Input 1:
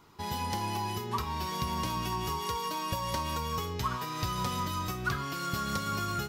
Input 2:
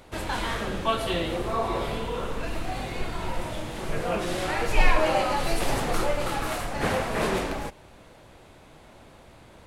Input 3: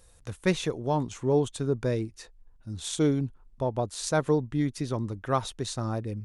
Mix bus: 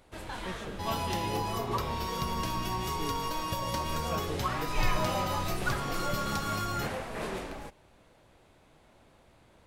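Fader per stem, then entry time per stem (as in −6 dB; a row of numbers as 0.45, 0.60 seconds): −0.5, −10.0, −16.5 decibels; 0.60, 0.00, 0.00 seconds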